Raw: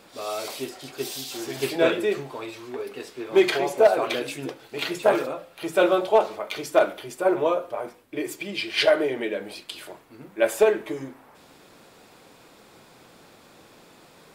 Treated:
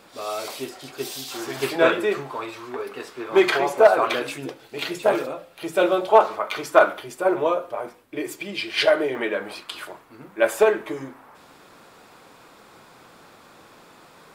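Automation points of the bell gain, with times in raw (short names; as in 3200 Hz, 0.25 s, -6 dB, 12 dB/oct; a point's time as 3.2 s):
bell 1200 Hz 1.2 oct
+3 dB
from 1.28 s +9.5 dB
from 4.38 s -0.5 dB
from 6.09 s +11 dB
from 7 s +3 dB
from 9.15 s +13.5 dB
from 9.85 s +6.5 dB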